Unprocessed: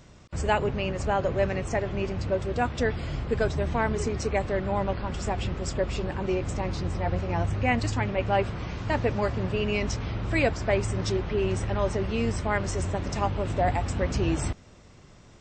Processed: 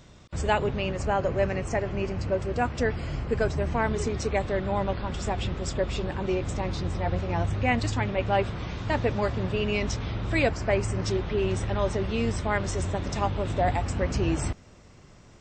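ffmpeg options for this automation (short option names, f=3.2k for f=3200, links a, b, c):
-af "asetnsamples=n=441:p=0,asendcmd='0.96 equalizer g -6.5;3.84 equalizer g 5.5;10.49 equalizer g -5.5;11.11 equalizer g 5.5;13.81 equalizer g -3',equalizer=f=3.6k:t=o:w=0.23:g=5.5"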